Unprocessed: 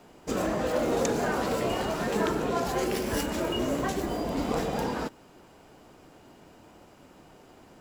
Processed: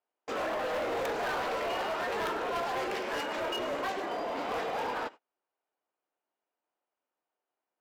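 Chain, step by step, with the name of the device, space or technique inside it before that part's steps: walkie-talkie (band-pass 600–2900 Hz; hard clipper -32.5 dBFS, distortion -10 dB; gate -47 dBFS, range -35 dB); peaking EQ 14 kHz +9 dB 0.57 oct; trim +3 dB

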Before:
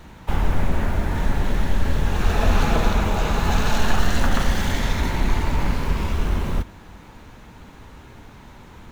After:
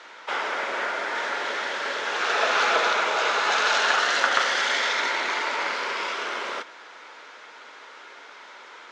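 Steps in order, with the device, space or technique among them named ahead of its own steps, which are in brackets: phone speaker on a table (cabinet simulation 460–6900 Hz, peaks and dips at 790 Hz -4 dB, 1.4 kHz +7 dB, 2.1 kHz +5 dB, 3.3 kHz +4 dB, 5 kHz +5 dB); trim +2.5 dB

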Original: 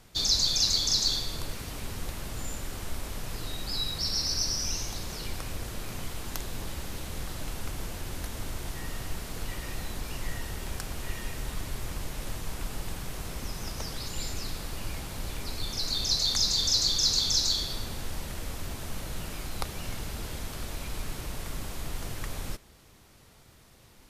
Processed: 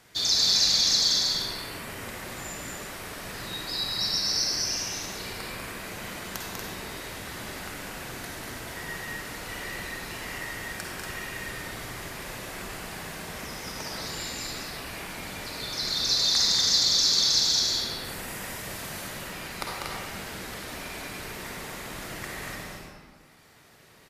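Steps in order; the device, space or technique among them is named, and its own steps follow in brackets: 18.04–19.07 s: treble shelf 5 kHz +5.5 dB; reverb removal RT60 1.8 s; stadium PA (high-pass 230 Hz 6 dB/octave; peaking EQ 1.8 kHz +5.5 dB 0.74 oct; loudspeakers at several distances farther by 67 m -5 dB, 81 m -5 dB; reverberation RT60 1.9 s, pre-delay 45 ms, DRR -3.5 dB)

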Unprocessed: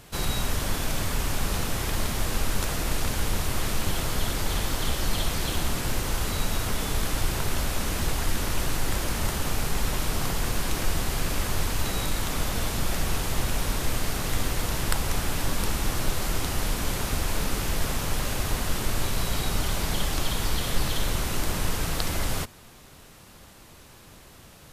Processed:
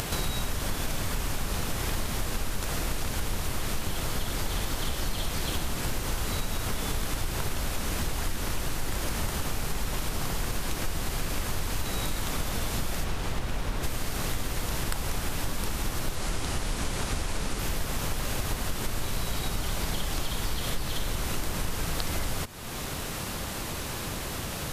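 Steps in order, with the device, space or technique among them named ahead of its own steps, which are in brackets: 13.03–13.82 s: treble shelf 7.9 kHz -> 4.5 kHz -11 dB; 16.15–17.59 s: low-pass 11 kHz 24 dB/octave; upward and downward compression (upward compressor, threshold -24 dBFS; compression 4:1, threshold -29 dBFS, peak gain reduction 11.5 dB); trim +3 dB

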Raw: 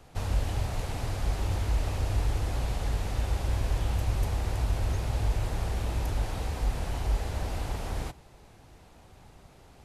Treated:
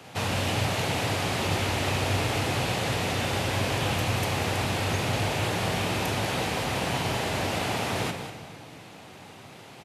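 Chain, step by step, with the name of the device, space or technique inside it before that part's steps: pre-echo 117 ms -23.5 dB; PA in a hall (high-pass 120 Hz 24 dB/octave; peaking EQ 2.7 kHz +6.5 dB 1.3 oct; delay 191 ms -10.5 dB; reverberation RT60 2.1 s, pre-delay 21 ms, DRR 7.5 dB); trim +8 dB

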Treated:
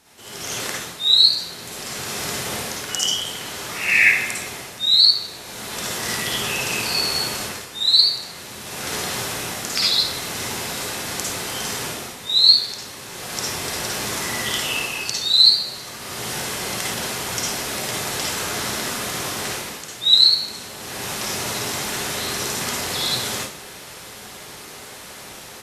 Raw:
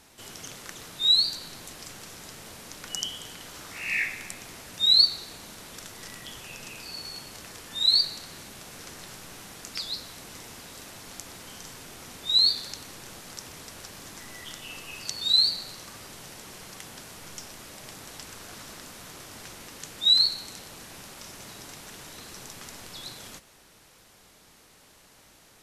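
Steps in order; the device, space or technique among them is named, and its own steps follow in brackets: far laptop microphone (reverberation RT60 0.50 s, pre-delay 47 ms, DRR -4.5 dB; high-pass 110 Hz 6 dB/octave; level rider gain up to 14 dB); trim -1 dB

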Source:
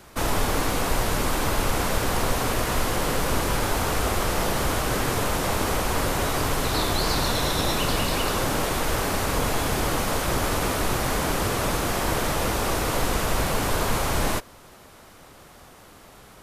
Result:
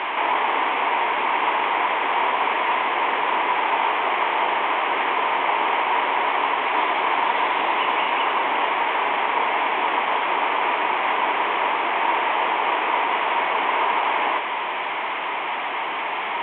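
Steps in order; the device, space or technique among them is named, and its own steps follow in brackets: digital answering machine (band-pass 350–3100 Hz; one-bit delta coder 16 kbps, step -26 dBFS; cabinet simulation 410–3400 Hz, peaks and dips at 530 Hz -8 dB, 950 Hz +9 dB, 1.4 kHz -6 dB, 2.2 kHz +5 dB, 3.3 kHz +5 dB); trim +5 dB

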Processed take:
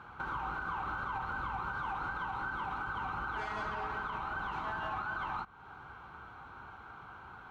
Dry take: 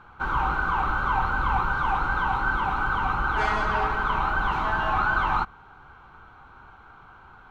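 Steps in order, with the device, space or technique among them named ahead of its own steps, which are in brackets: podcast mastering chain (high-pass 67 Hz 12 dB/octave; compression 3:1, threshold -36 dBFS, peak gain reduction 12 dB; peak limiter -28.5 dBFS, peak gain reduction 5 dB; MP3 112 kbps 44.1 kHz)

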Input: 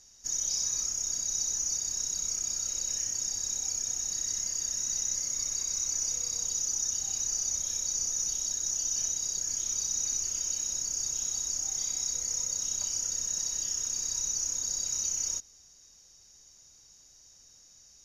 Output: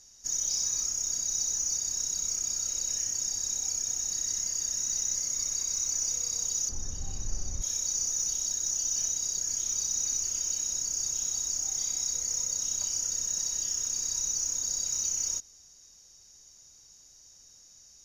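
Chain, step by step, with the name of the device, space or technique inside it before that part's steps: 6.69–7.62 s: tilt EQ -4 dB/octave; exciter from parts (in parallel at -9.5 dB: high-pass 3.8 kHz 12 dB/octave + saturation -33 dBFS, distortion -10 dB)

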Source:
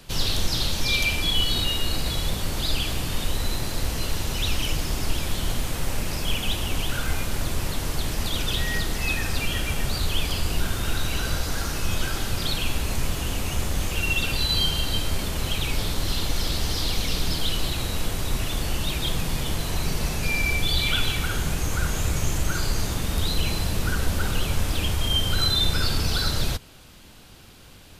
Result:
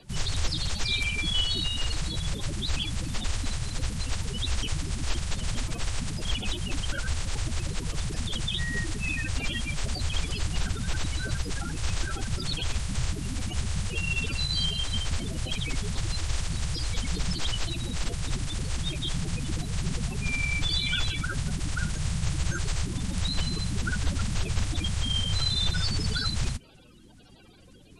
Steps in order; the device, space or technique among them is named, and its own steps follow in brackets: clip after many re-uploads (low-pass 8.7 kHz 24 dB/octave; coarse spectral quantiser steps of 30 dB); trim -4.5 dB

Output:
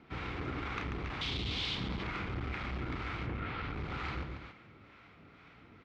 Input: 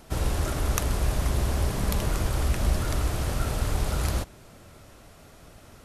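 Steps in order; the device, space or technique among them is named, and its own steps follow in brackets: 1.21–1.75 s: resonant high shelf 2.4 kHz +13.5 dB, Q 3; 3.25–3.72 s: low-pass 2.5 kHz -> 6.2 kHz 24 dB/octave; loudspeakers at several distances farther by 11 m -9 dB, 48 m -7 dB, 96 m -10 dB; guitar amplifier with harmonic tremolo (harmonic tremolo 2.1 Hz, depth 50%, crossover 680 Hz; saturation -21 dBFS, distortion -14 dB; cabinet simulation 82–3700 Hz, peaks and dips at 84 Hz -4 dB, 290 Hz +4 dB, 610 Hz -10 dB, 1.3 kHz +5 dB, 2.2 kHz +10 dB); trim -5.5 dB

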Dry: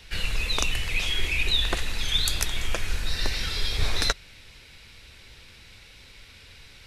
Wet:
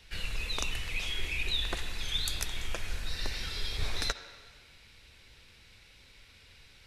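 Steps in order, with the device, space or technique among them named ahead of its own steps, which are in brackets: filtered reverb send (on a send: high-pass 270 Hz + low-pass 4.9 kHz + reverberation RT60 1.6 s, pre-delay 51 ms, DRR 11 dB); on the sum: trim -8 dB

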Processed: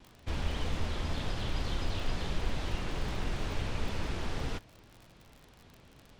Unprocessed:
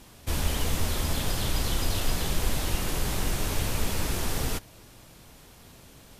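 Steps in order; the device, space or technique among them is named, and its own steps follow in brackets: lo-fi chain (low-pass 3.9 kHz 12 dB/octave; wow and flutter; crackle 46 per s -36 dBFS); trim -5.5 dB

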